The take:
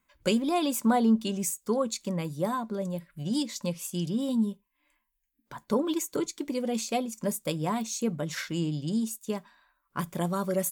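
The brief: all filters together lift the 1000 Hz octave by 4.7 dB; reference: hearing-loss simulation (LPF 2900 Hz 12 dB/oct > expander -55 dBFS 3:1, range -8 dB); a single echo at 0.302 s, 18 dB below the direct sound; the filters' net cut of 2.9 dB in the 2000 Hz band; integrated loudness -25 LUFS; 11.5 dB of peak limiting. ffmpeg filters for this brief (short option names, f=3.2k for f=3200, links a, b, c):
-af "equalizer=f=1k:t=o:g=7.5,equalizer=f=2k:t=o:g=-6,alimiter=limit=-23dB:level=0:latency=1,lowpass=2.9k,aecho=1:1:302:0.126,agate=range=-8dB:threshold=-55dB:ratio=3,volume=8dB"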